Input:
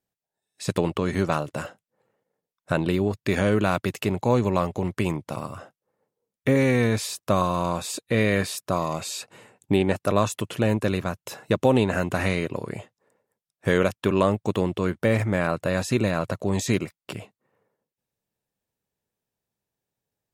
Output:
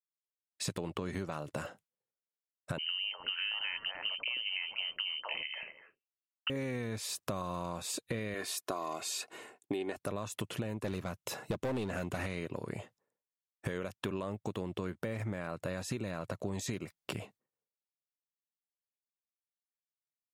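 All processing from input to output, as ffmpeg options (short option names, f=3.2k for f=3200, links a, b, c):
-filter_complex "[0:a]asettb=1/sr,asplit=3[a][b][c];[a]atrim=end=2.784[d];[b]atrim=start=2.78:end=6.5,asetpts=PTS-STARTPTS,afade=t=in:d=0.004:c=qsin,afade=t=out:st=3.716:d=0.004:c=qsin,highpass=f=120:p=1,lowpass=f=2.7k:t=q:w=0.5098,lowpass=f=2.7k:t=q:w=0.6013,lowpass=f=2.7k:t=q:w=0.9,lowpass=f=2.7k:t=q:w=2.563,afreqshift=-3200,acrossover=split=460|1400[e][f][g];[f]adelay=250[h];[e]adelay=340[i];[i][h][g]amix=inputs=3:normalize=0,atrim=end_sample=164052[j];[c]atrim=start=6.496[k];[d][j]acrossfade=d=0.004:c1=hsin:c2=qsin[l];[l][k]acrossfade=d=0.004:c1=qsin:c2=hsin,asettb=1/sr,asplit=3[m][n][o];[m]atrim=end=8.344[p];[n]atrim=start=8.34:end=9.97,asetpts=PTS-STARTPTS,afade=t=in:d=0.004:c=qsin,afade=t=out:st=1.626:d=0.004:c=qsin,highpass=260,aecho=1:1:2.8:0.46,atrim=end_sample=71883[q];[o]atrim=start=9.966[r];[p][q]acrossfade=d=0.004:c1=hsin:c2=qsin[s];[s][r]acrossfade=d=0.004:c1=qsin:c2=hsin,asettb=1/sr,asplit=3[t][u][v];[t]atrim=end=10.804[w];[u]atrim=start=10.8:end=12.26,asetpts=PTS-STARTPTS,afade=t=in:d=0.004:c=qsin,afade=t=out:st=1.456:d=0.004:c=qsin,bandreject=f=1.6k:w=21,asoftclip=type=hard:threshold=-18.5dB[x];[v]atrim=start=12.256[y];[w][x]acrossfade=d=0.004:c1=hsin:c2=qsin[z];[z][y]acrossfade=d=0.004:c1=qsin:c2=hsin,agate=range=-33dB:threshold=-52dB:ratio=3:detection=peak,alimiter=limit=-13.5dB:level=0:latency=1:release=157,acompressor=threshold=-34dB:ratio=6"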